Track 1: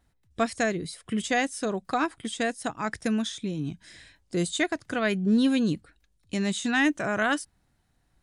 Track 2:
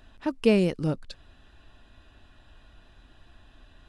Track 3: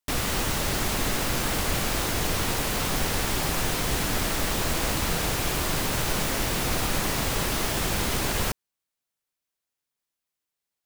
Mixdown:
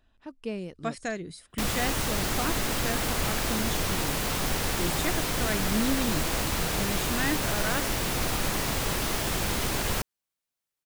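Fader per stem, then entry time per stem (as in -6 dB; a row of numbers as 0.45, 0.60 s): -6.5, -13.5, -2.0 dB; 0.45, 0.00, 1.50 s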